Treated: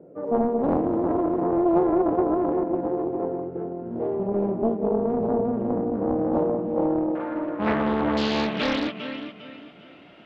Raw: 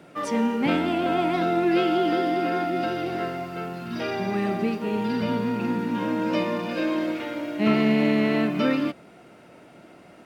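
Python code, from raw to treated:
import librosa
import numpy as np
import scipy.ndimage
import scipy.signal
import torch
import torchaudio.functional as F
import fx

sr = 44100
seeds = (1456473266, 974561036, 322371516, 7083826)

y = fx.lowpass_res(x, sr, hz=fx.steps((0.0, 480.0), (7.15, 1100.0), (8.17, 3200.0)), q=3.4)
y = fx.echo_feedback(y, sr, ms=402, feedback_pct=33, wet_db=-9.0)
y = fx.doppler_dist(y, sr, depth_ms=0.73)
y = y * 10.0 ** (-3.0 / 20.0)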